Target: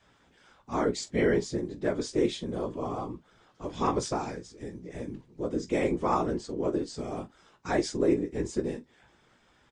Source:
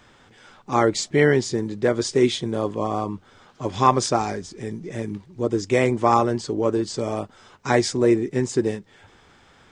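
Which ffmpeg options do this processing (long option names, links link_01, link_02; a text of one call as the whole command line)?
ffmpeg -i in.wav -af "afftfilt=real='hypot(re,im)*cos(2*PI*random(0))':imag='hypot(re,im)*sin(2*PI*random(1))':win_size=512:overlap=0.75,aecho=1:1:17|45:0.398|0.15,adynamicequalizer=threshold=0.0178:dfrequency=300:dqfactor=0.94:tfrequency=300:tqfactor=0.94:attack=5:release=100:ratio=0.375:range=2:mode=boostabove:tftype=bell,volume=-5dB" out.wav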